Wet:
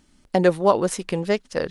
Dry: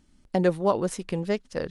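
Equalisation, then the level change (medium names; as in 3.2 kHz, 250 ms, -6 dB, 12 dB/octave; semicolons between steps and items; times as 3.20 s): bass shelf 260 Hz -7 dB; +7.0 dB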